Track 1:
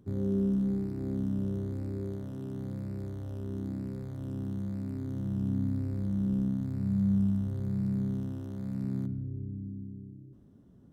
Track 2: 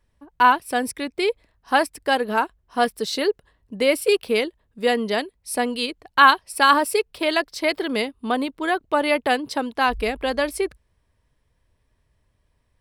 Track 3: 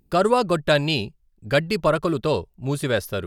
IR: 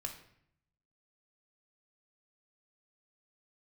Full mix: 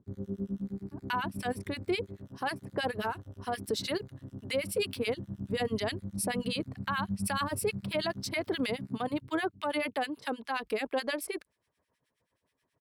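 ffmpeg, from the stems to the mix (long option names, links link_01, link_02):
-filter_complex "[0:a]volume=-4dB,afade=type=out:start_time=9.04:duration=0.31:silence=0.298538[link_01];[1:a]highpass=200,acompressor=threshold=-20dB:ratio=5,tremolo=f=7.3:d=0.51,adelay=700,volume=2dB[link_02];[link_01][link_02]amix=inputs=2:normalize=0,acrossover=split=1400[link_03][link_04];[link_03]aeval=exprs='val(0)*(1-1/2+1/2*cos(2*PI*9.4*n/s))':channel_layout=same[link_05];[link_04]aeval=exprs='val(0)*(1-1/2-1/2*cos(2*PI*9.4*n/s))':channel_layout=same[link_06];[link_05][link_06]amix=inputs=2:normalize=0,alimiter=limit=-22dB:level=0:latency=1:release=15"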